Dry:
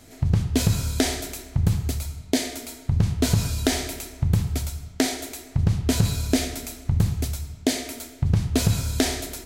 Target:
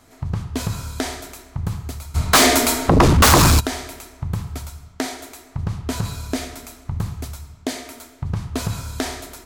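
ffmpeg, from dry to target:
-filter_complex "[0:a]asplit=3[a][b][c];[a]afade=t=out:st=2.14:d=0.02[d];[b]aeval=exprs='0.531*sin(PI/2*8.91*val(0)/0.531)':c=same,afade=t=in:st=2.14:d=0.02,afade=t=out:st=3.59:d=0.02[e];[c]afade=t=in:st=3.59:d=0.02[f];[d][e][f]amix=inputs=3:normalize=0,equalizer=f=1.1k:t=o:w=1:g=11,volume=-4.5dB"

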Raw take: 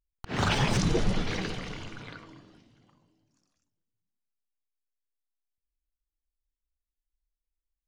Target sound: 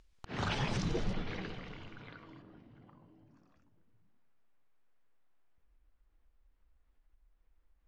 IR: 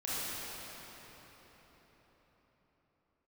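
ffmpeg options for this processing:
-af "acompressor=mode=upward:threshold=-36dB:ratio=2.5,asetnsamples=n=441:p=0,asendcmd='1.13 lowpass f 3400;2.42 lowpass f 1700',lowpass=5.9k,volume=-8.5dB"

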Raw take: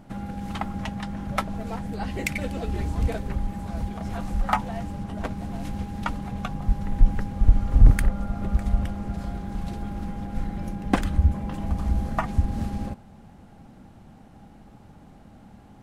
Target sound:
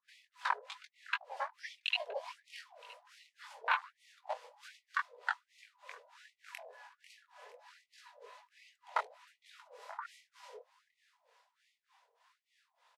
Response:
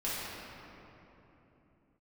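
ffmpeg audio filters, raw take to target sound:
-filter_complex "[0:a]afwtdn=0.0355,acrossover=split=200[a][b];[a]acompressor=threshold=-29dB:ratio=6[c];[c][b]amix=inputs=2:normalize=0,crystalizer=i=6.5:c=0,asetrate=53802,aresample=44100,flanger=delay=17.5:depth=6.3:speed=2.5,acrossover=split=660[d][e];[d]aeval=exprs='val(0)*(1-1/2+1/2*cos(2*PI*3.3*n/s))':c=same[f];[e]aeval=exprs='val(0)*(1-1/2-1/2*cos(2*PI*3.3*n/s))':c=same[g];[f][g]amix=inputs=2:normalize=0,alimiter=level_in=0.5dB:limit=-24dB:level=0:latency=1:release=366,volume=-0.5dB,highpass=140,lowpass=4.3k,aecho=1:1:969|1938:0.0708|0.0127,afftfilt=real='re*gte(b*sr/1024,420*pow(1900/420,0.5+0.5*sin(2*PI*1.3*pts/sr)))':imag='im*gte(b*sr/1024,420*pow(1900/420,0.5+0.5*sin(2*PI*1.3*pts/sr)))':win_size=1024:overlap=0.75,volume=7dB"

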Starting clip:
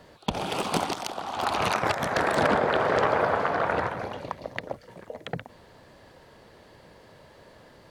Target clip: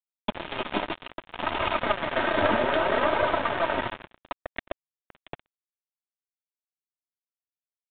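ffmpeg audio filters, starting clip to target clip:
-af "aecho=1:1:3.2:0.69,flanger=delay=1.7:depth=8.5:regen=26:speed=0.62:shape=triangular,aeval=exprs='(tanh(5.62*val(0)+0.65)-tanh(0.65))/5.62':c=same,aresample=16000,acrusher=bits=4:mix=0:aa=0.5,aresample=44100,aresample=8000,aresample=44100,volume=4.5dB"

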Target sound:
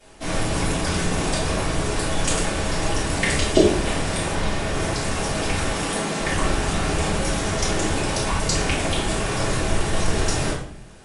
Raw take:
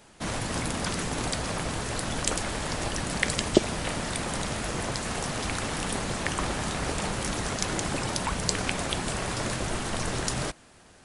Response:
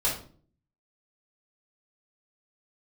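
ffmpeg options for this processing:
-filter_complex "[0:a]asettb=1/sr,asplit=3[a][b][c];[a]atrim=end=4.314[d];[b]atrim=start=4.31:end=4.73,asetpts=PTS-STARTPTS,afade=t=in:d=0.004:c=qsin,afade=t=out:st=0.416:d=0.004:c=qsin,acrossover=split=5000[e][f];[f]acompressor=threshold=-43dB:ratio=4:attack=1:release=60[g];[e][g]amix=inputs=2:normalize=0[h];[c]atrim=start=4.726[i];[d][h]acrossfade=d=0.004:c1=hsin:c2=qsin[j];[j][i]acrossfade=d=0.004:c1=qsin:c2=hsin,asettb=1/sr,asplit=3[k][l][m];[k]atrim=end=5.724[n];[l]atrim=start=5.72:end=6.19,asetpts=PTS-STARTPTS,afade=t=in:d=0.004:c=qsin,afade=t=out:st=0.466:d=0.004:c=qsin,highpass=f=150:w=0.5412,highpass=f=150:w=1.3066[o];[m]atrim=start=6.186[p];[n][o]acrossfade=d=0.004:c1=hsin:c2=qsin[q];[q][p]acrossfade=d=0.004:c1=qsin:c2=hsin[r];[1:a]atrim=start_sample=2205,asetrate=29547,aresample=44100[s];[r][s]afir=irnorm=-1:irlink=0,volume=-6.5dB"

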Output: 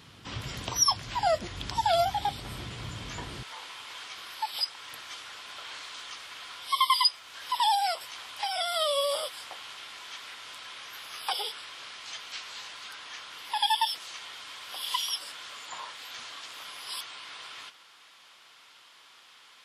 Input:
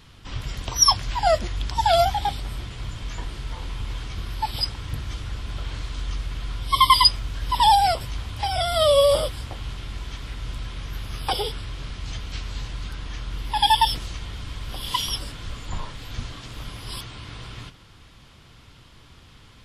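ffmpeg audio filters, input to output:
-af "asetnsamples=n=441:p=0,asendcmd='3.43 highpass f 850',highpass=120,acompressor=threshold=-33dB:ratio=1.5"

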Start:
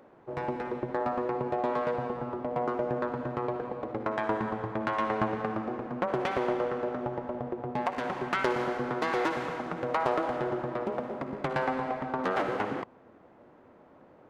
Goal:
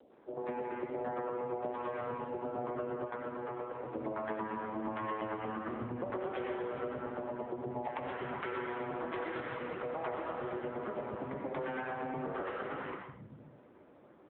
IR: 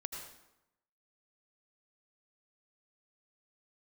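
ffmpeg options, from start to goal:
-filter_complex "[0:a]acrossover=split=160|860[a][b][c];[c]adelay=100[d];[a]adelay=600[e];[e][b][d]amix=inputs=3:normalize=0[f];[1:a]atrim=start_sample=2205,afade=t=out:st=0.33:d=0.01,atrim=end_sample=14994[g];[f][g]afir=irnorm=-1:irlink=0,acompressor=threshold=-34dB:ratio=6,asplit=3[h][i][j];[h]afade=t=out:st=3.04:d=0.02[k];[i]lowshelf=f=270:g=-7.5,afade=t=in:st=3.04:d=0.02,afade=t=out:st=3.94:d=0.02[l];[j]afade=t=in:st=3.94:d=0.02[m];[k][l][m]amix=inputs=3:normalize=0,volume=1dB" -ar 8000 -c:a libopencore_amrnb -b:a 6700

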